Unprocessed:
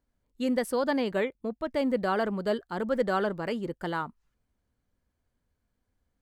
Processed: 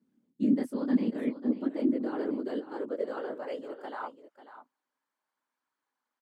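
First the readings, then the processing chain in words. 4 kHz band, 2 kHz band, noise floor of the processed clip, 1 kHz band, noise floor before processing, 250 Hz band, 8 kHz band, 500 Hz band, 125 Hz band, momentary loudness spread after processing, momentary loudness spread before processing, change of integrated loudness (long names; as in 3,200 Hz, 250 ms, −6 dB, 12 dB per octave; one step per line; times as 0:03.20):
−13.0 dB, −12.0 dB, below −85 dBFS, −9.5 dB, −80 dBFS, +2.5 dB, can't be measured, −6.5 dB, −5.5 dB, 12 LU, 6 LU, −2.0 dB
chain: chorus effect 1.7 Hz, delay 19 ms, depth 2.1 ms
high-shelf EQ 9,900 Hz −5 dB
reversed playback
downward compressor 6 to 1, threshold −39 dBFS, peak gain reduction 14 dB
reversed playback
random phases in short frames
parametric band 260 Hz +13.5 dB 0.78 octaves
notch filter 700 Hz, Q 12
high-pass filter sweep 220 Hz → 990 Hz, 0:01.03–0:04.97
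on a send: single-tap delay 543 ms −12.5 dB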